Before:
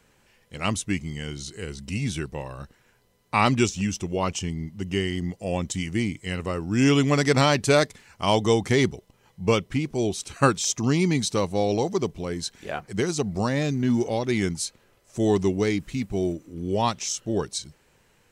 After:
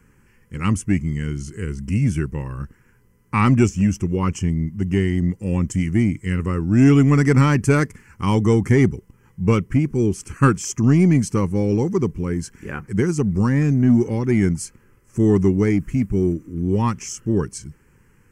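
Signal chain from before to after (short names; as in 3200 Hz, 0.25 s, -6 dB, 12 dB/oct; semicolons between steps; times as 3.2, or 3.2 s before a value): tilt shelf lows +4.5 dB, about 790 Hz; fixed phaser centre 1600 Hz, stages 4; in parallel at -4.5 dB: soft clip -18 dBFS, distortion -13 dB; on the sum: gain +2.5 dB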